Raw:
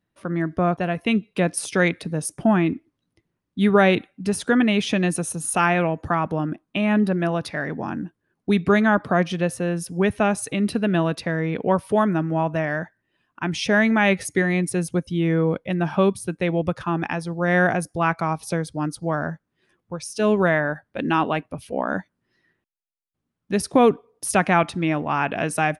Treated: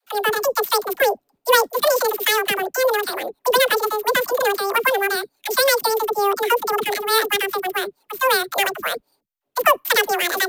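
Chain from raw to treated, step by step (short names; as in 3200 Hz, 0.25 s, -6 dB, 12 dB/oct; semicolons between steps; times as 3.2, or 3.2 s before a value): sample sorter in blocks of 8 samples; wide varispeed 2.46×; dispersion lows, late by 65 ms, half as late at 390 Hz; gain +2 dB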